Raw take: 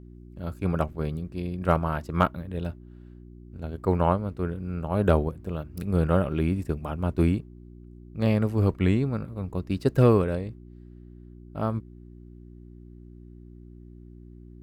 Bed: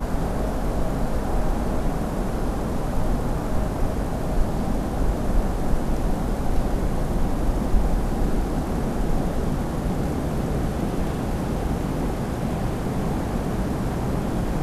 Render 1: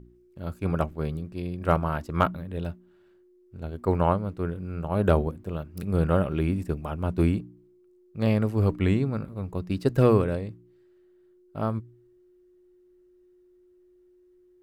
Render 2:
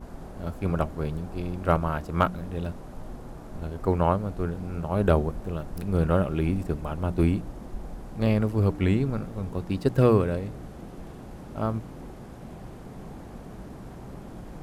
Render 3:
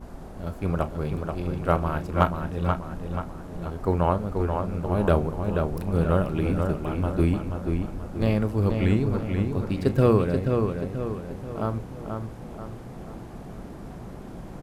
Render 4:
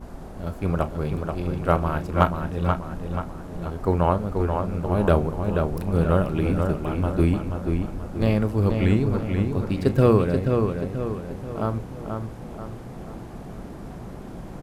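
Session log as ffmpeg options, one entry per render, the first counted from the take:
ffmpeg -i in.wav -af "bandreject=frequency=60:width_type=h:width=4,bandreject=frequency=120:width_type=h:width=4,bandreject=frequency=180:width_type=h:width=4,bandreject=frequency=240:width_type=h:width=4,bandreject=frequency=300:width_type=h:width=4" out.wav
ffmpeg -i in.wav -i bed.wav -filter_complex "[1:a]volume=-16.5dB[link_01];[0:a][link_01]amix=inputs=2:normalize=0" out.wav
ffmpeg -i in.wav -filter_complex "[0:a]asplit=2[link_01][link_02];[link_02]adelay=34,volume=-13.5dB[link_03];[link_01][link_03]amix=inputs=2:normalize=0,asplit=2[link_04][link_05];[link_05]adelay=483,lowpass=frequency=4300:poles=1,volume=-5dB,asplit=2[link_06][link_07];[link_07]adelay=483,lowpass=frequency=4300:poles=1,volume=0.47,asplit=2[link_08][link_09];[link_09]adelay=483,lowpass=frequency=4300:poles=1,volume=0.47,asplit=2[link_10][link_11];[link_11]adelay=483,lowpass=frequency=4300:poles=1,volume=0.47,asplit=2[link_12][link_13];[link_13]adelay=483,lowpass=frequency=4300:poles=1,volume=0.47,asplit=2[link_14][link_15];[link_15]adelay=483,lowpass=frequency=4300:poles=1,volume=0.47[link_16];[link_06][link_08][link_10][link_12][link_14][link_16]amix=inputs=6:normalize=0[link_17];[link_04][link_17]amix=inputs=2:normalize=0" out.wav
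ffmpeg -i in.wav -af "volume=2dB" out.wav

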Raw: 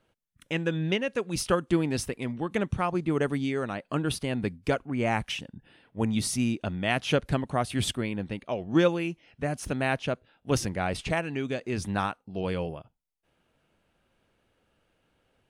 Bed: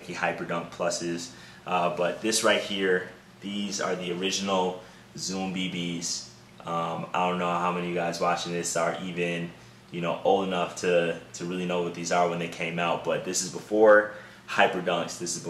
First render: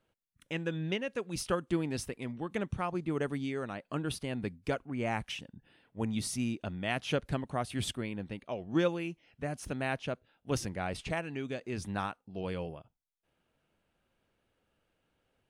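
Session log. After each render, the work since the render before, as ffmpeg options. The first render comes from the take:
ffmpeg -i in.wav -af "volume=-6.5dB" out.wav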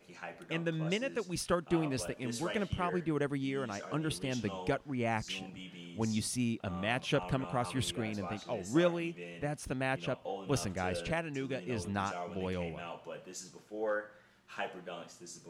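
ffmpeg -i in.wav -i bed.wav -filter_complex "[1:a]volume=-17.5dB[link_01];[0:a][link_01]amix=inputs=2:normalize=0" out.wav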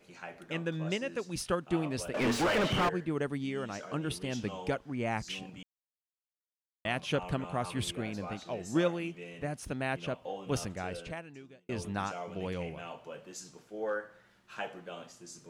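ffmpeg -i in.wav -filter_complex "[0:a]asettb=1/sr,asplit=3[link_01][link_02][link_03];[link_01]atrim=end=2.144[link_04];[link_02]atrim=start=2.14:end=2.89,asetpts=PTS-STARTPTS,afade=type=in:duration=0.004:curve=qsin,afade=type=out:start_time=0.746:duration=0.004:curve=qsin,asplit=2[link_05][link_06];[link_06]highpass=frequency=720:poles=1,volume=36dB,asoftclip=type=tanh:threshold=-19.5dB[link_07];[link_05][link_07]amix=inputs=2:normalize=0,lowpass=frequency=1600:poles=1,volume=-6dB[link_08];[link_03]atrim=start=2.886[link_09];[link_04][link_08]acrossfade=duration=0.004:curve1=hsin:curve2=qsin[link_10];[link_10][link_09]acrossfade=duration=0.004:curve1=qsin:curve2=hsin,asplit=4[link_11][link_12][link_13][link_14];[link_11]atrim=end=5.63,asetpts=PTS-STARTPTS,afade=type=out:start_time=5.626:duration=0.004:curve=hsin[link_15];[link_12]atrim=start=5.63:end=6.85,asetpts=PTS-STARTPTS,volume=0[link_16];[link_13]atrim=start=6.85:end=11.69,asetpts=PTS-STARTPTS,afade=type=in:duration=0.004:curve=hsin,afade=type=out:start_time=3.66:duration=1.18[link_17];[link_14]atrim=start=11.69,asetpts=PTS-STARTPTS,afade=type=in:duration=0.004:curve=hsin[link_18];[link_15][link_16][link_17][link_18]concat=n=4:v=0:a=1" out.wav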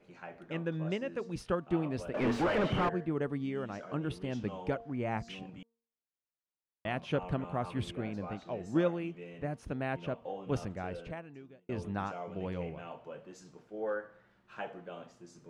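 ffmpeg -i in.wav -af "lowpass=frequency=1400:poles=1,bandreject=frequency=230.6:width_type=h:width=4,bandreject=frequency=461.2:width_type=h:width=4,bandreject=frequency=691.8:width_type=h:width=4,bandreject=frequency=922.4:width_type=h:width=4,bandreject=frequency=1153:width_type=h:width=4" out.wav

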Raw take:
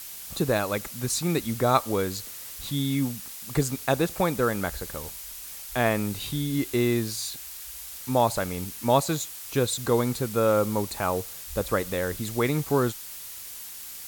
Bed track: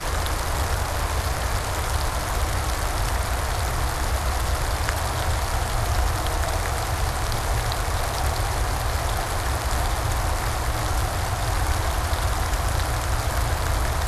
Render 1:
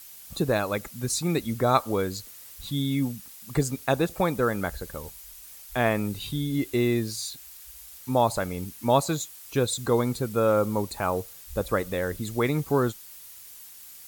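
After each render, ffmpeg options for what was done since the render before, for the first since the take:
ffmpeg -i in.wav -af "afftdn=noise_reduction=8:noise_floor=-40" out.wav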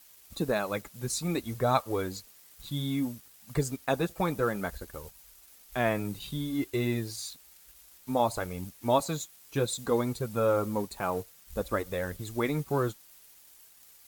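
ffmpeg -i in.wav -af "aeval=exprs='sgn(val(0))*max(abs(val(0))-0.00376,0)':channel_layout=same,flanger=delay=1:depth=5.9:regen=-43:speed=0.58:shape=triangular" out.wav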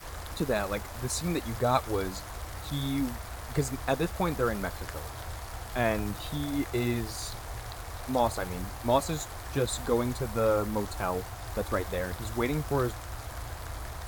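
ffmpeg -i in.wav -i bed.wav -filter_complex "[1:a]volume=-15.5dB[link_01];[0:a][link_01]amix=inputs=2:normalize=0" out.wav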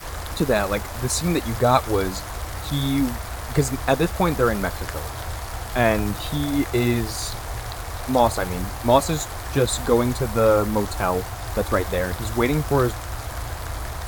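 ffmpeg -i in.wav -af "volume=8.5dB,alimiter=limit=-3dB:level=0:latency=1" out.wav

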